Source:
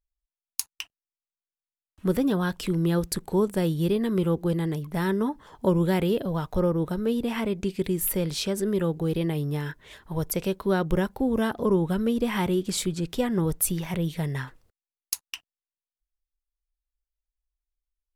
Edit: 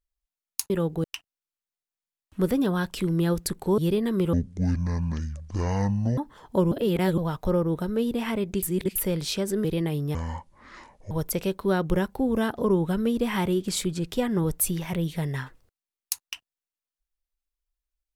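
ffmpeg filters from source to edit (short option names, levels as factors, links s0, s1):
-filter_complex "[0:a]asplit=13[s0][s1][s2][s3][s4][s5][s6][s7][s8][s9][s10][s11][s12];[s0]atrim=end=0.702[s13];[s1]atrim=start=8.738:end=9.082[s14];[s2]atrim=start=0.698:end=3.442[s15];[s3]atrim=start=3.758:end=4.314[s16];[s4]atrim=start=4.31:end=5.27,asetpts=PTS-STARTPTS,asetrate=22932,aresample=44100,atrim=end_sample=81415,asetpts=PTS-STARTPTS[s17];[s5]atrim=start=5.266:end=5.812[s18];[s6]atrim=start=5.808:end=6.272,asetpts=PTS-STARTPTS,areverse[s19];[s7]atrim=start=6.268:end=7.722[s20];[s8]atrim=start=7.718:end=8.052,asetpts=PTS-STARTPTS,areverse[s21];[s9]atrim=start=8.048:end=8.742[s22];[s10]atrim=start=9.078:end=9.584[s23];[s11]atrim=start=9.58:end=10.12,asetpts=PTS-STARTPTS,asetrate=24696,aresample=44100[s24];[s12]atrim=start=10.116[s25];[s13][s14]acrossfade=d=0.004:c1=hsin:c2=hsin[s26];[s26][s15]acrossfade=d=0.004:c1=hsin:c2=hsin[s27];[s27][s16]acrossfade=d=0.004:c1=hsin:c2=hsin[s28];[s28][s17]acrossfade=d=0.004:c1=hsin:c2=hsin[s29];[s29][s18]acrossfade=d=0.004:c1=hsin:c2=hsin[s30];[s30][s19]acrossfade=d=0.004:c1=hsin:c2=hsin[s31];[s31][s20]acrossfade=d=0.004:c1=hsin:c2=hsin[s32];[s32][s21]acrossfade=d=0.004:c1=hsin:c2=hsin[s33];[s33][s22]acrossfade=d=0.004:c1=hsin:c2=hsin[s34];[s34][s23]acrossfade=d=0.004:c1=hsin:c2=hsin[s35];[s35][s24]acrossfade=d=0.004:c1=hsin:c2=hsin[s36];[s36][s25]acrossfade=d=0.004:c1=hsin:c2=hsin"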